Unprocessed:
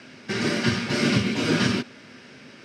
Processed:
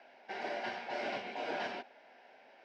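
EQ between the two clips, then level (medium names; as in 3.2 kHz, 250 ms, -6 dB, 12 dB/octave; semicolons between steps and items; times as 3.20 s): resonant high-pass 750 Hz, resonance Q 4.9; tape spacing loss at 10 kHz 32 dB; peaking EQ 1.2 kHz -14 dB 0.35 oct; -7.5 dB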